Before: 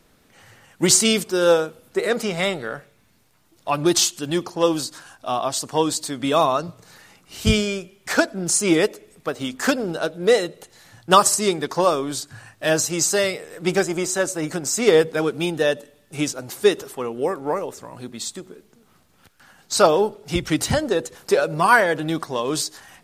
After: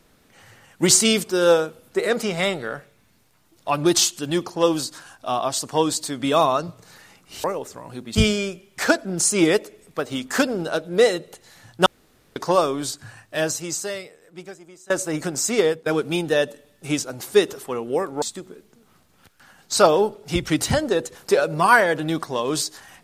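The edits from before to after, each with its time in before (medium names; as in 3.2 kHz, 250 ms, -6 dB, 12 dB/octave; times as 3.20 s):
11.15–11.65 s: room tone
12.34–14.19 s: fade out quadratic, to -23.5 dB
14.75–15.15 s: fade out, to -17 dB
17.51–18.22 s: move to 7.44 s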